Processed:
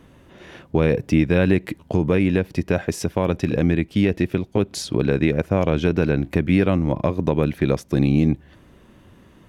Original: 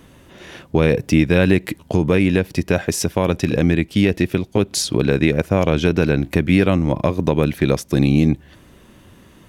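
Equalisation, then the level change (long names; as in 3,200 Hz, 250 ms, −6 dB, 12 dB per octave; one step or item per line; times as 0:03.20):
high-shelf EQ 3,400 Hz −8.5 dB
−2.5 dB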